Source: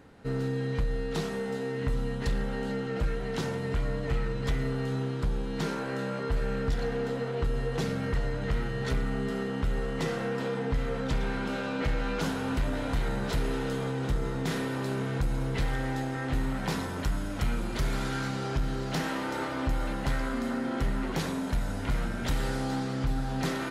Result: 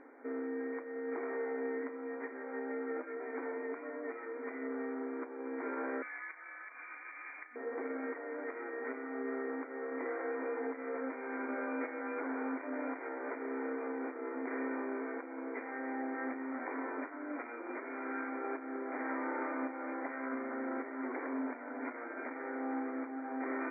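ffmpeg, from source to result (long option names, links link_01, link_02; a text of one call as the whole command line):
ffmpeg -i in.wav -filter_complex "[0:a]asettb=1/sr,asplit=3[link_01][link_02][link_03];[link_01]atrim=end=2.264[link_04];[link_02]atrim=start=2.26:end=4.49,asetpts=PTS-STARTPTS,afade=type=in:duration=0.004:curve=qsin,afade=type=out:start_time=2.226:duration=0.004:curve=qsin,flanger=delay=2.8:depth=2.1:regen=-61:speed=1.1:shape=sinusoidal[link_05];[link_03]atrim=start=4.486[link_06];[link_04][link_05]acrossfade=duration=0.004:curve1=hsin:curve2=qsin[link_07];[link_07][link_06]acrossfade=duration=0.004:curve1=qsin:curve2=hsin,asettb=1/sr,asplit=3[link_08][link_09][link_10];[link_08]atrim=end=6.024[link_11];[link_09]atrim=start=6.02:end=7.56,asetpts=PTS-STARTPTS,afade=type=in:duration=0.004:curve=qsin,afade=type=out:start_time=1.536:duration=0.004:curve=qsin,lowpass=frequency=2600:width_type=q:width=0.5098,lowpass=frequency=2600:width_type=q:width=0.6013,lowpass=frequency=2600:width_type=q:width=0.9,lowpass=frequency=2600:width_type=q:width=2.563,afreqshift=-3100[link_12];[link_10]atrim=start=7.556[link_13];[link_11][link_12]acrossfade=duration=0.004:curve1=hsin:curve2=qsin[link_14];[link_14][link_13]acrossfade=duration=0.004:curve1=qsin:curve2=hsin,alimiter=level_in=4.5dB:limit=-24dB:level=0:latency=1:release=46,volume=-4.5dB,afftfilt=real='re*between(b*sr/4096,240,2400)':imag='im*between(b*sr/4096,240,2400)':win_size=4096:overlap=0.75" out.wav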